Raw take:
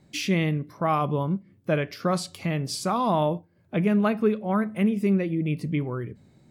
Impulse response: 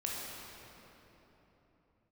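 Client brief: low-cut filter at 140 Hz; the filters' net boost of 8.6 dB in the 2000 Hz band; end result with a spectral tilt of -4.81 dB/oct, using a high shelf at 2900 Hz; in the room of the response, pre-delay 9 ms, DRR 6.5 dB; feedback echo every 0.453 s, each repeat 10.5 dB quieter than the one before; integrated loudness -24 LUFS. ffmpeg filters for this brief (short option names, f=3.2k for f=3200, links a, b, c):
-filter_complex "[0:a]highpass=140,equalizer=f=2k:t=o:g=8,highshelf=f=2.9k:g=6.5,aecho=1:1:453|906|1359:0.299|0.0896|0.0269,asplit=2[a][b];[1:a]atrim=start_sample=2205,adelay=9[c];[b][c]afir=irnorm=-1:irlink=0,volume=-10dB[d];[a][d]amix=inputs=2:normalize=0,volume=-1dB"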